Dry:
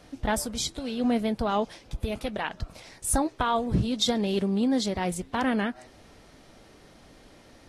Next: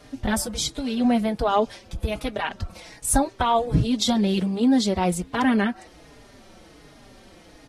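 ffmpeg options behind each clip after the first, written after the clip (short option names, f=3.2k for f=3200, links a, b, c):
-filter_complex "[0:a]asplit=2[a][b];[b]adelay=4.4,afreqshift=-1.3[c];[a][c]amix=inputs=2:normalize=1,volume=7dB"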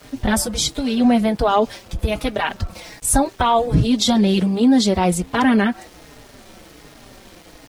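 -filter_complex "[0:a]asplit=2[a][b];[b]alimiter=limit=-15dB:level=0:latency=1,volume=0dB[c];[a][c]amix=inputs=2:normalize=0,aeval=exprs='val(0)*gte(abs(val(0)),0.00708)':c=same"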